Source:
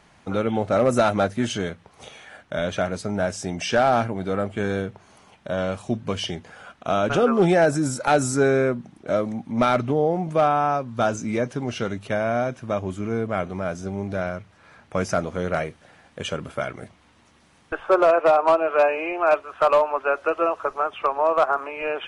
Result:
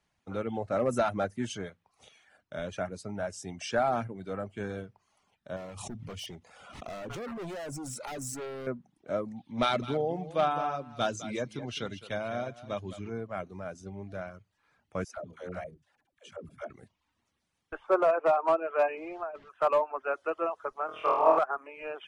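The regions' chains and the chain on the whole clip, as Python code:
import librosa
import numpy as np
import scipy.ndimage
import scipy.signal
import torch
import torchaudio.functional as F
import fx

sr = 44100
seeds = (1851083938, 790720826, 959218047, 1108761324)

y = fx.chain(x, sr, fx.notch(hz=1600.0, q=5.5),
    fx.clip_hard(threshold_db=-25.0),
    fx.pre_swell(db_per_s=34.0), at=(5.56, 8.67))
y = fx.chain(y, sr, fx.peak_eq(hz=3600.0, db=12.5, octaves=0.76),
    fx.echo_single(ms=208, db=-10.0), at=(9.36, 13.1))
y = fx.chain(y, sr, fx.peak_eq(hz=610.0, db=3.5, octaves=0.35),
    fx.level_steps(step_db=13),
    fx.dispersion(late='lows', ms=130.0, hz=380.0), at=(15.04, 16.7))
y = fx.chain(y, sr, fx.delta_mod(bps=64000, step_db=-31.0),
    fx.over_compress(threshold_db=-20.0, ratio=-0.5),
    fx.spacing_loss(db_at_10k=35), at=(18.97, 19.49))
y = fx.chain(y, sr, fx.peak_eq(hz=5000.0, db=5.0, octaves=0.6),
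    fx.room_flutter(wall_m=4.3, rt60_s=1.5), at=(20.86, 21.39))
y = fx.dereverb_blind(y, sr, rt60_s=0.63)
y = fx.dynamic_eq(y, sr, hz=4000.0, q=1.1, threshold_db=-41.0, ratio=4.0, max_db=-4)
y = fx.band_widen(y, sr, depth_pct=40)
y = y * 10.0 ** (-9.0 / 20.0)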